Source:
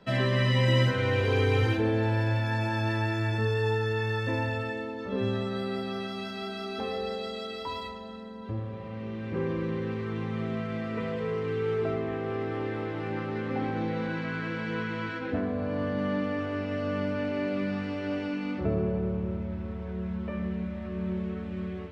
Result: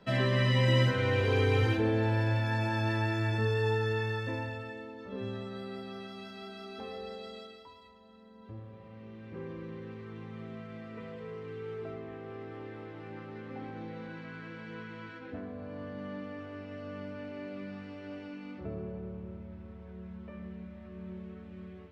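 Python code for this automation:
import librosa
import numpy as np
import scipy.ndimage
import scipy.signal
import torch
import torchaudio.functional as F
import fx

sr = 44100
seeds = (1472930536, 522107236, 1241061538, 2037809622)

y = fx.gain(x, sr, db=fx.line((3.93, -2.0), (4.6, -9.0), (7.38, -9.0), (7.76, -20.0), (8.42, -11.5)))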